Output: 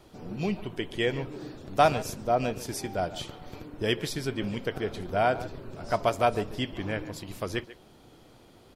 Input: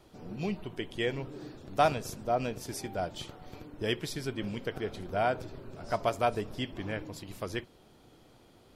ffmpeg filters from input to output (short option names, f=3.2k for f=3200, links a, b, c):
-filter_complex "[0:a]asplit=2[a][b];[b]adelay=140,highpass=300,lowpass=3.4k,asoftclip=type=hard:threshold=-21.5dB,volume=-15dB[c];[a][c]amix=inputs=2:normalize=0,volume=4dB"